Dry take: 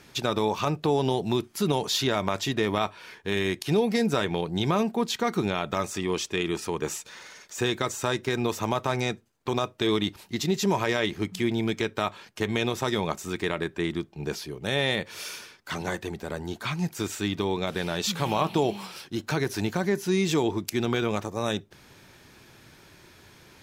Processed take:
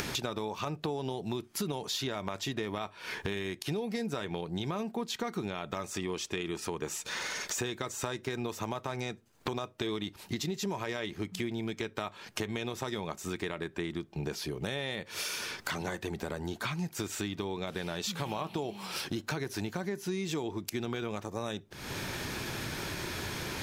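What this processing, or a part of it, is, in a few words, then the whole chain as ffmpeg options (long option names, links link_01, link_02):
upward and downward compression: -af "acompressor=mode=upward:threshold=-28dB:ratio=2.5,acompressor=threshold=-37dB:ratio=6,volume=4.5dB"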